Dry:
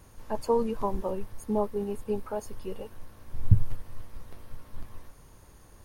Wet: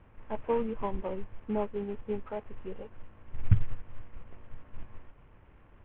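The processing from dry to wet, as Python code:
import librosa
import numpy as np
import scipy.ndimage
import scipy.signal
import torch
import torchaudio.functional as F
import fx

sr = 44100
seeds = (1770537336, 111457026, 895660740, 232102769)

y = fx.cvsd(x, sr, bps=16000)
y = fx.air_absorb(y, sr, metres=370.0)
y = y * 10.0 ** (-2.5 / 20.0)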